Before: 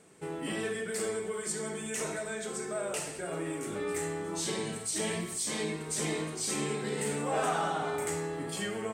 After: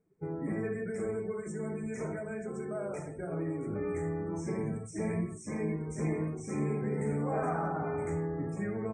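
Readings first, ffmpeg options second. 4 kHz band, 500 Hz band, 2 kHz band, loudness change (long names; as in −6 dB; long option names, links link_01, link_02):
below −25 dB, −1.0 dB, −7.0 dB, −1.5 dB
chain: -af "afftfilt=real='re*(1-between(b*sr/4096,2500,5200))':imag='im*(1-between(b*sr/4096,2500,5200))':win_size=4096:overlap=0.75,afftdn=noise_reduction=20:noise_floor=-44,aemphasis=mode=reproduction:type=riaa,volume=-4dB"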